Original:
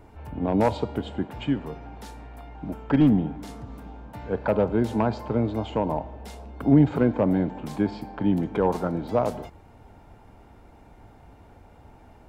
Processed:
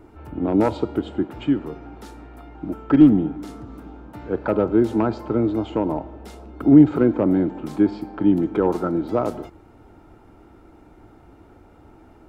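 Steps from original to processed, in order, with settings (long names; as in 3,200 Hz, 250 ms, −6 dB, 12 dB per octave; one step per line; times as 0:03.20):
hollow resonant body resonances 330/1,300 Hz, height 12 dB, ringing for 35 ms
level −1 dB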